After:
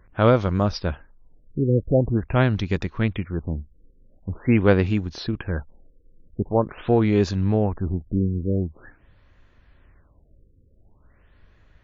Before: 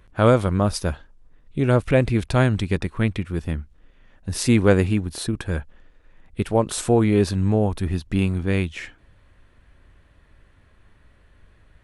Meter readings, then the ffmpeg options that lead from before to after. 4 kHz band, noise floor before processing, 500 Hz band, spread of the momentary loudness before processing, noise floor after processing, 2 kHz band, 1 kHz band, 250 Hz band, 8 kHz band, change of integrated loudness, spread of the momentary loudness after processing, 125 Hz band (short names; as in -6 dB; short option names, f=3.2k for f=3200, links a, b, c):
-4.0 dB, -56 dBFS, -1.0 dB, 13 LU, -58 dBFS, -2.5 dB, -1.0 dB, -1.0 dB, under -15 dB, -1.0 dB, 13 LU, -1.0 dB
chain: -af "aeval=exprs='0.841*(cos(1*acos(clip(val(0)/0.841,-1,1)))-cos(1*PI/2))+0.0376*(cos(3*acos(clip(val(0)/0.841,-1,1)))-cos(3*PI/2))':c=same,afftfilt=real='re*lt(b*sr/1024,520*pow(7400/520,0.5+0.5*sin(2*PI*0.45*pts/sr)))':imag='im*lt(b*sr/1024,520*pow(7400/520,0.5+0.5*sin(2*PI*0.45*pts/sr)))':win_size=1024:overlap=0.75"